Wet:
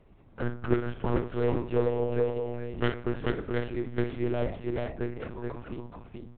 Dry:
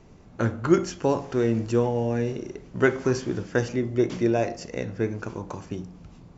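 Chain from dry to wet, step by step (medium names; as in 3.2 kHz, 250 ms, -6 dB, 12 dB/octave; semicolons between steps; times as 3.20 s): self-modulated delay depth 0.23 ms; 0.94–2.10 s: comb 6.3 ms, depth 68%; multi-tap echo 53/430/474 ms -9/-3.5/-18 dB; monotone LPC vocoder at 8 kHz 120 Hz; trim -6.5 dB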